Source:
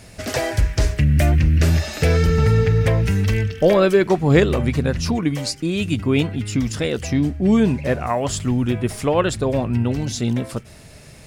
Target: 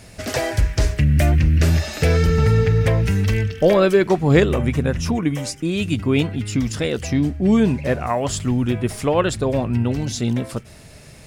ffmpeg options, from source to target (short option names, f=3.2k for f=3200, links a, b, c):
-filter_complex "[0:a]asettb=1/sr,asplit=3[a][b][c];[a]atrim=end=4.454[d];[b]atrim=start=4.45:end=5.66,asetpts=PTS-STARTPTS,afade=t=in:d=0.004:c=qsin,afade=t=out:st=1.206:d=0.004:c=qsin,equalizer=f=4.4k:w=5:g=-11.5[e];[c]atrim=start=5.656[f];[d][e]acrossfade=d=0.004:c1=hsin:c2=qsin[g];[g][f]acrossfade=d=0.004:c1=qsin:c2=hsin"